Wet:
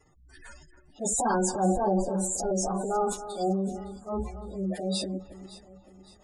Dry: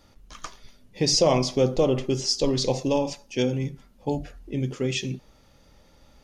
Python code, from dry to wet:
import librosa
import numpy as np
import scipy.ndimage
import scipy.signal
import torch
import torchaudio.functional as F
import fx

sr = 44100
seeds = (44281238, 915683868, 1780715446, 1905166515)

y = fx.pitch_bins(x, sr, semitones=6.5)
y = fx.transient(y, sr, attack_db=-8, sustain_db=9)
y = fx.spec_gate(y, sr, threshold_db=-20, keep='strong')
y = fx.echo_alternate(y, sr, ms=281, hz=2100.0, feedback_pct=64, wet_db=-13)
y = y * 10.0 ** (-1.5 / 20.0)